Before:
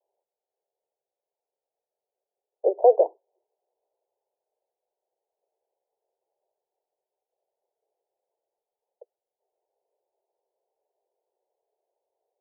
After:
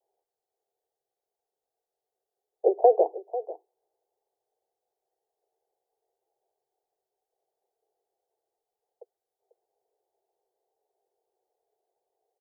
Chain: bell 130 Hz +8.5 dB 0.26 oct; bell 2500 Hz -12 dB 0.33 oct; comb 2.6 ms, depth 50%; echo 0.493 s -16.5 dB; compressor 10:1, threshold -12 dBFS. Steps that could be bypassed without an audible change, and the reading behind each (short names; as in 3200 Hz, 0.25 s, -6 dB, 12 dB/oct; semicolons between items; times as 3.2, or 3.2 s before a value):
bell 130 Hz: input band starts at 320 Hz; bell 2500 Hz: input band ends at 960 Hz